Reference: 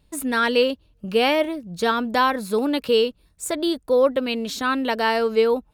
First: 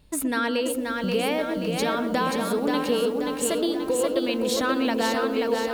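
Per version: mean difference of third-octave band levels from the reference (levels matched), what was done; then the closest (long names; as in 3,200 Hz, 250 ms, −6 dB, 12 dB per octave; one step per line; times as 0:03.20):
9.5 dB: downward compressor 6 to 1, threshold −28 dBFS, peak gain reduction 14 dB
on a send: feedback echo with a band-pass in the loop 121 ms, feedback 63%, band-pass 350 Hz, level −5 dB
on the sum: feedback echo at a low word length 531 ms, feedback 55%, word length 9 bits, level −4 dB
level +4 dB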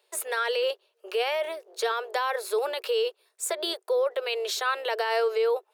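7.0 dB: sub-octave generator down 2 octaves, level −5 dB
Chebyshev high-pass filter 370 Hz, order 8
brickwall limiter −20 dBFS, peak gain reduction 11.5 dB
level +1.5 dB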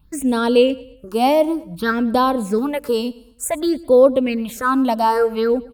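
4.5 dB: parametric band 3,700 Hz −8.5 dB 1.3 octaves
all-pass phaser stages 6, 0.56 Hz, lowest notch 110–2,000 Hz
on a send: repeating echo 109 ms, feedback 41%, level −20.5 dB
on the sum: level +7 dB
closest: third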